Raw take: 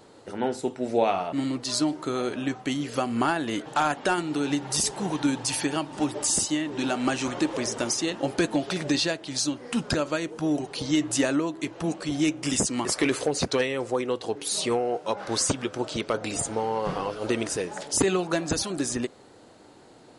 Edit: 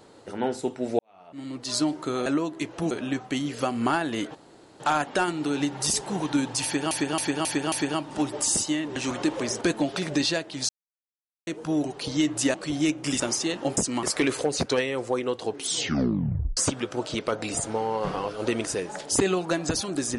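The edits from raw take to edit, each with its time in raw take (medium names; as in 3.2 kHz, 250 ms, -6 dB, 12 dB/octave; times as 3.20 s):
0.99–1.76 s: fade in quadratic
3.70 s: insert room tone 0.45 s
5.54–5.81 s: loop, 5 plays
6.78–7.13 s: delete
7.78–8.35 s: move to 12.59 s
9.43–10.21 s: mute
11.28–11.93 s: move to 2.26 s
14.38 s: tape stop 1.01 s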